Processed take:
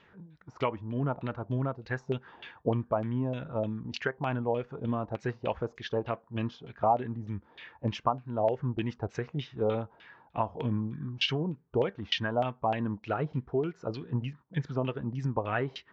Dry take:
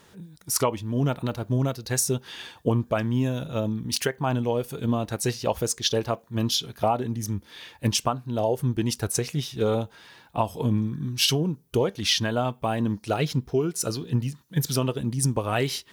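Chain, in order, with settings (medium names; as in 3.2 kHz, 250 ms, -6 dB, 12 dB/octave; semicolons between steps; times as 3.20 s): resampled via 16 kHz; LFO low-pass saw down 3.3 Hz 650–2900 Hz; trim -7 dB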